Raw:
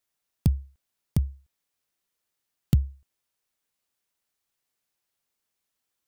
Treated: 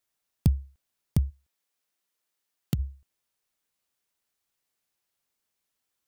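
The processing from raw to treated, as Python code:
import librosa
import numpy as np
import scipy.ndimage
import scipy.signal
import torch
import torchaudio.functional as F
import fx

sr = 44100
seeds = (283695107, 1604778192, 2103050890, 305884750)

y = fx.highpass(x, sr, hz=250.0, slope=6, at=(1.29, 2.78), fade=0.02)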